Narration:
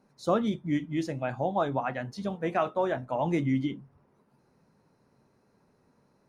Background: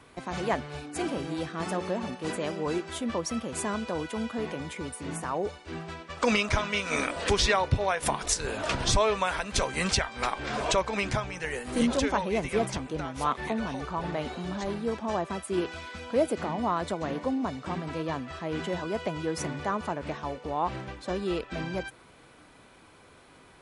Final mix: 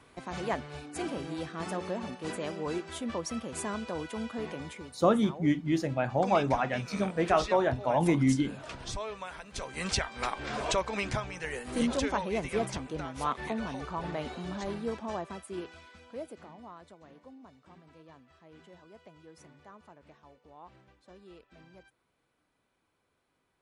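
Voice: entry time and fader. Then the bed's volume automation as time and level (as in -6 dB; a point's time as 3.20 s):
4.75 s, +2.0 dB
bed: 4.68 s -4 dB
4.99 s -13.5 dB
9.51 s -13.5 dB
9.97 s -3.5 dB
14.85 s -3.5 dB
16.96 s -22.5 dB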